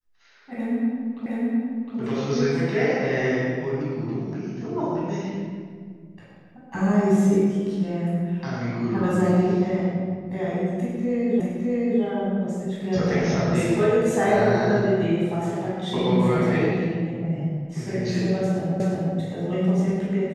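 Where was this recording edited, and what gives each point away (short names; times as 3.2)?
1.26 repeat of the last 0.71 s
11.4 repeat of the last 0.61 s
18.8 repeat of the last 0.36 s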